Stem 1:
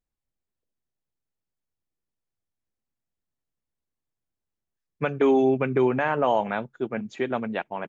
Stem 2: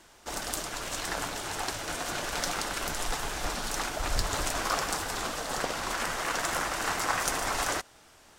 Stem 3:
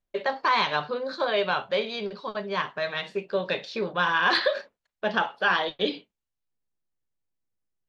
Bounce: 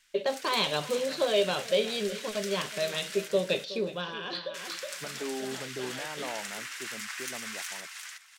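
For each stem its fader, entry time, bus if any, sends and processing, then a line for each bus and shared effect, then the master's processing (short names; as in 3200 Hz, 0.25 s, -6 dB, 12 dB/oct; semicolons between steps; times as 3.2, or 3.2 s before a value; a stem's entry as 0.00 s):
-16.5 dB, 0.00 s, no send, no echo send, dry
-1.0 dB, 0.00 s, muted 3.28–4.54, no send, echo send -3.5 dB, one-sided fold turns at -16 dBFS; ladder high-pass 1600 Hz, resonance 30%
+1.0 dB, 0.00 s, no send, echo send -16.5 dB, band shelf 1300 Hz -10 dB; auto duck -22 dB, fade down 1.35 s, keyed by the first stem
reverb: off
echo: feedback echo 0.368 s, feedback 23%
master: dry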